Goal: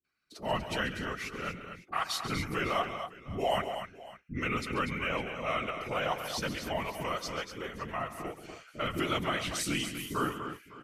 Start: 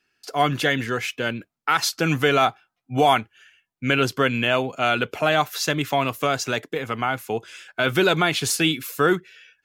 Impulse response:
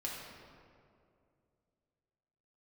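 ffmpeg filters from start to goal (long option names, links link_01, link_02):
-filter_complex "[0:a]afftfilt=real='hypot(re,im)*cos(2*PI*random(0))':imag='hypot(re,im)*sin(2*PI*random(1))':win_size=512:overlap=0.75,acrossover=split=420[link_01][link_02];[link_02]adelay=40[link_03];[link_01][link_03]amix=inputs=2:normalize=0,asetrate=39249,aresample=44100,asplit=2[link_04][link_05];[link_05]aecho=0:1:137|242|555:0.224|0.376|0.112[link_06];[link_04][link_06]amix=inputs=2:normalize=0,volume=-5.5dB"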